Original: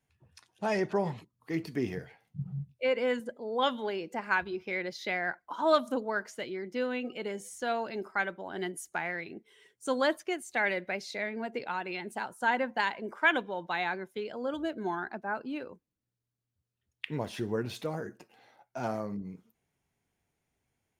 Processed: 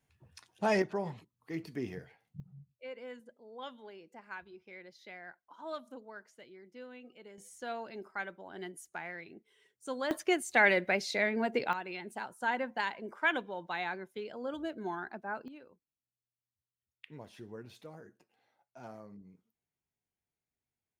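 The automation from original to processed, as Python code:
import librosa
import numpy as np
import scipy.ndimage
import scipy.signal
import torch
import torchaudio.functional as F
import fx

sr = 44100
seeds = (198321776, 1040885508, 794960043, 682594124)

y = fx.gain(x, sr, db=fx.steps((0.0, 1.5), (0.82, -6.0), (2.4, -16.5), (7.38, -8.0), (10.11, 4.5), (11.73, -4.5), (15.48, -14.5)))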